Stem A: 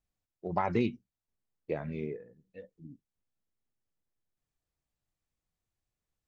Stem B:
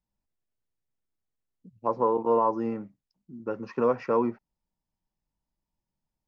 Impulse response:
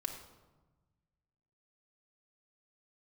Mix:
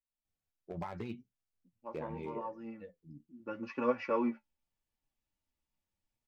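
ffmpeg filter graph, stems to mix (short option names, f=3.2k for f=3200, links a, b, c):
-filter_complex "[0:a]acompressor=threshold=-32dB:ratio=10,aeval=exprs='0.0355*(cos(1*acos(clip(val(0)/0.0355,-1,1)))-cos(1*PI/2))+0.00178*(cos(3*acos(clip(val(0)/0.0355,-1,1)))-cos(3*PI/2))':c=same,adelay=250,volume=0dB[a];[1:a]equalizer=f=2.6k:w=1.3:g=10,aecho=1:1:3.5:0.7,volume=-5dB,afade=t=in:st=3.23:d=0.34:silence=0.281838[b];[a][b]amix=inputs=2:normalize=0,flanger=delay=7.1:depth=6.8:regen=40:speed=0.79:shape=triangular"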